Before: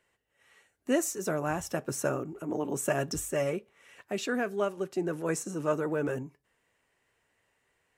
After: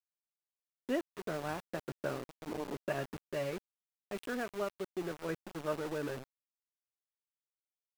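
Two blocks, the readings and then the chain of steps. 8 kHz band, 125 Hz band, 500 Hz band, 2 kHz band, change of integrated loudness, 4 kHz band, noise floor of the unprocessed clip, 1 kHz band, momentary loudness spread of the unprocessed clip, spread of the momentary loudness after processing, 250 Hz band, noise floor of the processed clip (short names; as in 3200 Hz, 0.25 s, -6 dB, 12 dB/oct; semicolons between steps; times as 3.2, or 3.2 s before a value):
-18.0 dB, -8.0 dB, -7.5 dB, -6.5 dB, -8.0 dB, -6.0 dB, -76 dBFS, -6.5 dB, 6 LU, 7 LU, -8.0 dB, under -85 dBFS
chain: downsampling 8000 Hz; sample gate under -33.5 dBFS; gain -7 dB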